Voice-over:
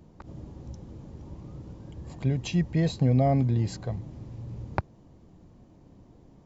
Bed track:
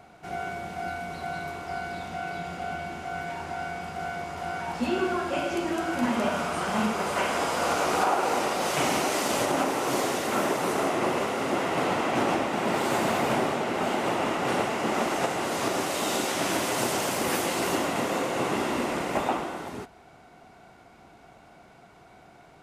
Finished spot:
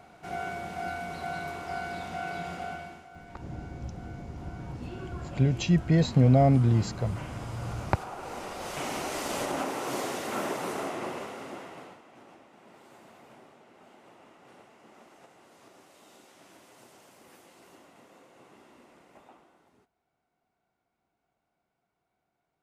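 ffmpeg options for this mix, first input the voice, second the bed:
-filter_complex "[0:a]adelay=3150,volume=1.33[s0];[1:a]volume=2.99,afade=t=out:st=2.52:d=0.56:silence=0.16788,afade=t=in:st=8.08:d=1.29:silence=0.281838,afade=t=out:st=10.57:d=1.44:silence=0.0749894[s1];[s0][s1]amix=inputs=2:normalize=0"

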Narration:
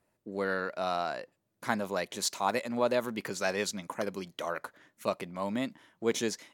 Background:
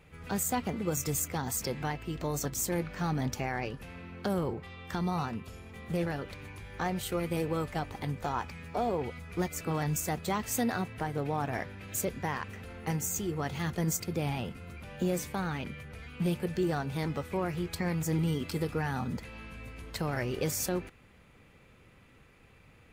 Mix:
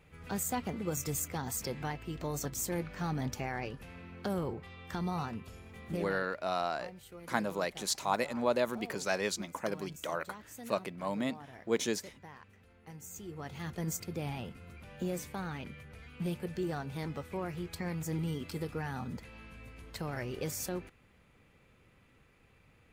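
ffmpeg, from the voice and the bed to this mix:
-filter_complex "[0:a]adelay=5650,volume=0.841[s0];[1:a]volume=2.66,afade=t=out:st=5.86:d=0.44:silence=0.199526,afade=t=in:st=12.93:d=0.95:silence=0.251189[s1];[s0][s1]amix=inputs=2:normalize=0"

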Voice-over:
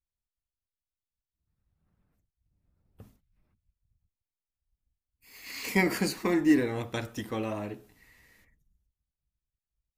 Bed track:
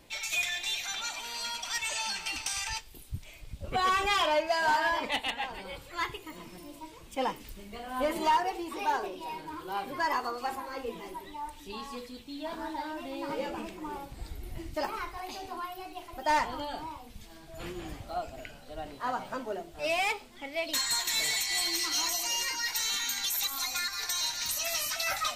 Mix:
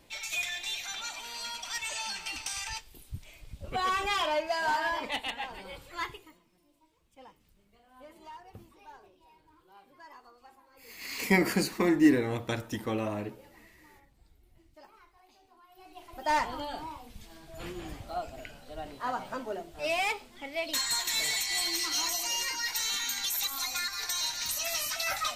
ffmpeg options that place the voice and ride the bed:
-filter_complex "[0:a]adelay=5550,volume=1.12[s0];[1:a]volume=8.91,afade=t=out:st=6.03:d=0.37:silence=0.105925,afade=t=in:st=15.67:d=0.68:silence=0.0841395[s1];[s0][s1]amix=inputs=2:normalize=0"

